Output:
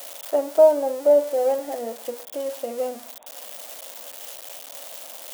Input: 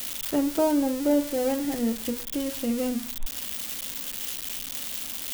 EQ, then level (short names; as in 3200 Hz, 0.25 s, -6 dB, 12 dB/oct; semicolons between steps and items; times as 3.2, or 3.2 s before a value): resonant high-pass 620 Hz, resonance Q 4; bell 2800 Hz -7.5 dB 2.8 oct; high shelf 9400 Hz -7.5 dB; +1.5 dB